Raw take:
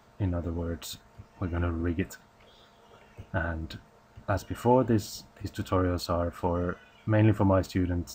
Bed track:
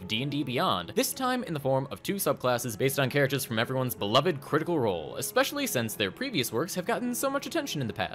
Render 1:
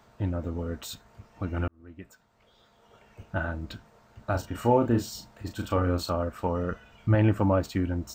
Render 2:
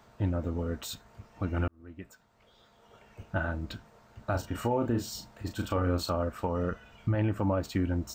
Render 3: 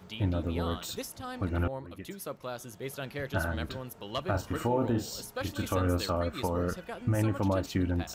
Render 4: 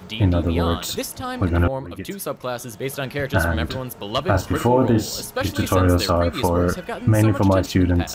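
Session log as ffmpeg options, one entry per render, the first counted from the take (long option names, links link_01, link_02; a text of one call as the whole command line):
ffmpeg -i in.wav -filter_complex "[0:a]asettb=1/sr,asplit=3[link_01][link_02][link_03];[link_01]atrim=end=4.314[link_04];[link_02]atrim=start=4.31:end=6.13,asetpts=PTS-STARTPTS,afade=type=in:duration=0.004:curve=qsin,afade=type=out:start_time=1.816:duration=0.004:curve=qsin,asplit=2[link_05][link_06];[link_06]adelay=34,volume=-7dB[link_07];[link_05][link_07]amix=inputs=2:normalize=0,atrim=end_sample=80262[link_08];[link_03]atrim=start=6.126[link_09];[link_04][link_08]acrossfade=duration=0.004:curve1=hsin:curve2=qsin[link_10];[link_10][link_09]acrossfade=duration=0.004:curve1=qsin:curve2=hsin,asettb=1/sr,asplit=3[link_11][link_12][link_13];[link_11]atrim=end=6.714[link_14];[link_12]atrim=start=6.71:end=7.15,asetpts=PTS-STARTPTS,afade=type=in:duration=0.004:curve=qsin,afade=type=out:start_time=0.436:duration=0.004:curve=qsin,lowshelf=frequency=130:gain=10[link_15];[link_13]atrim=start=7.146[link_16];[link_14][link_15]acrossfade=duration=0.004:curve1=hsin:curve2=qsin[link_17];[link_17][link_16]acrossfade=duration=0.004:curve1=qsin:curve2=hsin,asplit=2[link_18][link_19];[link_18]atrim=end=1.68,asetpts=PTS-STARTPTS,afade=type=out:start_time=1.676:duration=0.004:curve=hsin[link_20];[link_19]atrim=start=1.68,asetpts=PTS-STARTPTS,afade=type=in:duration=1.69[link_21];[link_20][link_21]concat=n=2:v=0:a=1" out.wav
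ffmpeg -i in.wav -af "alimiter=limit=-19dB:level=0:latency=1:release=180" out.wav
ffmpeg -i in.wav -i bed.wav -filter_complex "[1:a]volume=-12dB[link_01];[0:a][link_01]amix=inputs=2:normalize=0" out.wav
ffmpeg -i in.wav -af "volume=11.5dB" out.wav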